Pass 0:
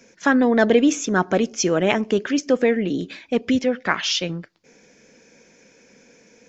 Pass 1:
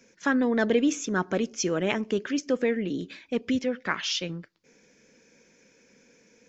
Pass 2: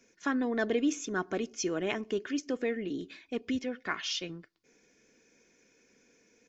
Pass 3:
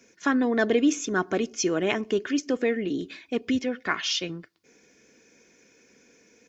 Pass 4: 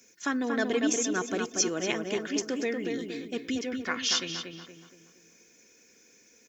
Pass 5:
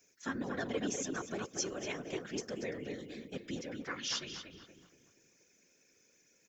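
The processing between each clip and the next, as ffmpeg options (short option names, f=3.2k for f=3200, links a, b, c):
-af "equalizer=f=720:t=o:w=0.52:g=-5,volume=-6.5dB"
-af "aecho=1:1:2.8:0.36,volume=-6dB"
-af "highpass=47,volume=7dB"
-filter_complex "[0:a]aemphasis=mode=production:type=75fm,asplit=2[a][b];[b]adelay=235,lowpass=f=2.4k:p=1,volume=-4dB,asplit=2[c][d];[d]adelay=235,lowpass=f=2.4k:p=1,volume=0.44,asplit=2[e][f];[f]adelay=235,lowpass=f=2.4k:p=1,volume=0.44,asplit=2[g][h];[h]adelay=235,lowpass=f=2.4k:p=1,volume=0.44,asplit=2[i][j];[j]adelay=235,lowpass=f=2.4k:p=1,volume=0.44,asplit=2[k][l];[l]adelay=235,lowpass=f=2.4k:p=1,volume=0.44[m];[c][e][g][i][k][m]amix=inputs=6:normalize=0[n];[a][n]amix=inputs=2:normalize=0,volume=-6dB"
-af "afftfilt=real='hypot(re,im)*cos(2*PI*random(0))':imag='hypot(re,im)*sin(2*PI*random(1))':win_size=512:overlap=0.75,volume=-3.5dB"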